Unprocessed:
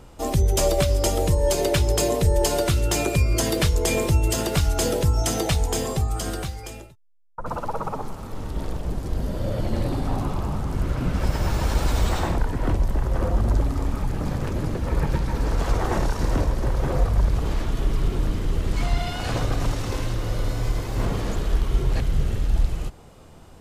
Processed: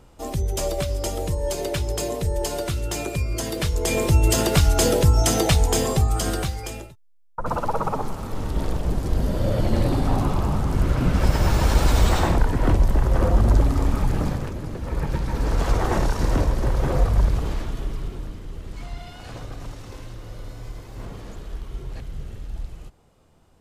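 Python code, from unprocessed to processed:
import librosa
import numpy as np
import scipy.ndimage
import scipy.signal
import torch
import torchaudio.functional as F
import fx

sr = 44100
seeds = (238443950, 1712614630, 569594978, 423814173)

y = fx.gain(x, sr, db=fx.line((3.53, -5.0), (4.28, 4.0), (14.2, 4.0), (14.59, -6.0), (15.57, 1.5), (17.23, 1.5), (18.41, -11.5)))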